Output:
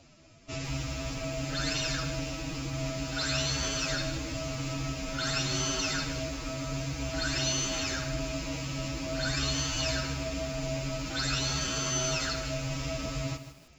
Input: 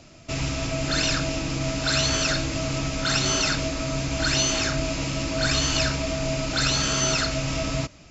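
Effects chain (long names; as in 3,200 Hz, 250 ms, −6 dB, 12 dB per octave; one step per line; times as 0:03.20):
phase-vocoder stretch with locked phases 1.7×
feedback echo at a low word length 155 ms, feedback 35%, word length 7 bits, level −11 dB
level −7.5 dB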